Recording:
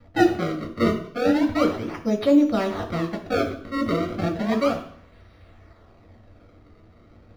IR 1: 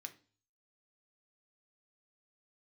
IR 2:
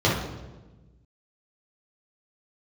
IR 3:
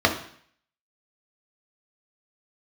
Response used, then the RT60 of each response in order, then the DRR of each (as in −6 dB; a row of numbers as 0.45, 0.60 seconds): 3; 0.40, 1.2, 0.60 seconds; 5.5, −7.0, 1.5 decibels